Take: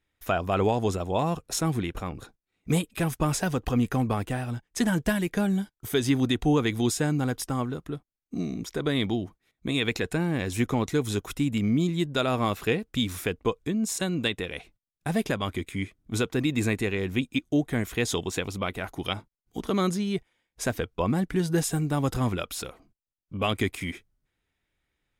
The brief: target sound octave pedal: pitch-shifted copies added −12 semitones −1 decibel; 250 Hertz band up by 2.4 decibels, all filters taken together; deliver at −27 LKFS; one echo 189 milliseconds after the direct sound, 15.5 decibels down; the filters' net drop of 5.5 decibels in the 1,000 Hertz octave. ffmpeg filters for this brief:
ffmpeg -i in.wav -filter_complex "[0:a]equalizer=frequency=250:width_type=o:gain=3.5,equalizer=frequency=1000:width_type=o:gain=-8,aecho=1:1:189:0.168,asplit=2[link_01][link_02];[link_02]asetrate=22050,aresample=44100,atempo=2,volume=-1dB[link_03];[link_01][link_03]amix=inputs=2:normalize=0,volume=-2.5dB" out.wav

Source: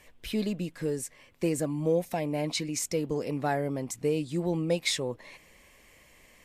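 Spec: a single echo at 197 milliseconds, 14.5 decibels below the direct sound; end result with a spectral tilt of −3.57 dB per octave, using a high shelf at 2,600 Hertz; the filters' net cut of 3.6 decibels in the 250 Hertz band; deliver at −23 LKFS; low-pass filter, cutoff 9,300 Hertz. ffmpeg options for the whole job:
ffmpeg -i in.wav -af "lowpass=9300,equalizer=frequency=250:width_type=o:gain=-5.5,highshelf=frequency=2600:gain=5,aecho=1:1:197:0.188,volume=8dB" out.wav

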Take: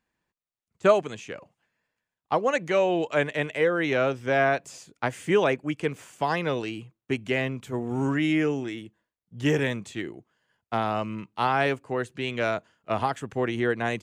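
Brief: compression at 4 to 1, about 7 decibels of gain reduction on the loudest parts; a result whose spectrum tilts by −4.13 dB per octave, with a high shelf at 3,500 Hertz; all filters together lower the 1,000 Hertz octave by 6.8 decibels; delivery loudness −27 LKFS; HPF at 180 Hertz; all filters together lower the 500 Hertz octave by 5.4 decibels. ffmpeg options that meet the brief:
ffmpeg -i in.wav -af "highpass=180,equalizer=frequency=500:width_type=o:gain=-4.5,equalizer=frequency=1000:width_type=o:gain=-8.5,highshelf=frequency=3500:gain=6,acompressor=threshold=-28dB:ratio=4,volume=7dB" out.wav

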